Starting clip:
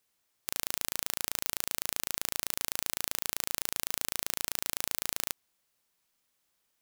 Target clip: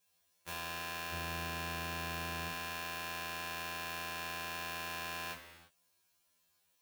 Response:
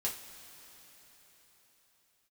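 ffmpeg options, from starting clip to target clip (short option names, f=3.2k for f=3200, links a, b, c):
-filter_complex "[0:a]asettb=1/sr,asplit=3[a][b][c];[a]atrim=end=1.104[d];[b]atrim=start=1.1:end=2.5,asetpts=PTS-STARTPTS,afade=t=in:d=0.004:c=qsin,afade=t=out:st=1.396:d=0.004:c=qsin,lowshelf=f=290:g=11.5[e];[c]atrim=start=2.496[f];[d][e]acrossfade=d=0.004:c1=hsin:c2=qsin[g];[g][f]acrossfade=d=0.004:c1=qsin:c2=hsin,acrossover=split=3200[h][i];[i]acompressor=threshold=-44dB:ratio=10[j];[h][j]amix=inputs=2:normalize=0[k];[1:a]atrim=start_sample=2205,afade=t=out:st=0.42:d=0.01,atrim=end_sample=18963[l];[k][l]afir=irnorm=-1:irlink=0,afftfilt=real='re*2*eq(mod(b,4),0)':imag='im*2*eq(mod(b,4),0)':win_size=2048:overlap=0.75,volume=1.5dB"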